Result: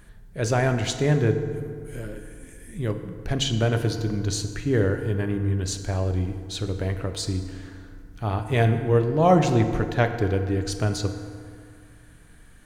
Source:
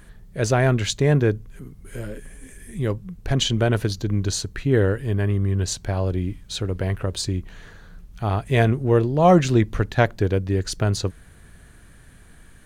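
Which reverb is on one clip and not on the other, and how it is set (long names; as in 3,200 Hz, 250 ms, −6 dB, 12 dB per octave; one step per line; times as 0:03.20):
feedback delay network reverb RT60 2.2 s, low-frequency decay 1×, high-frequency decay 0.55×, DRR 6.5 dB
level −3.5 dB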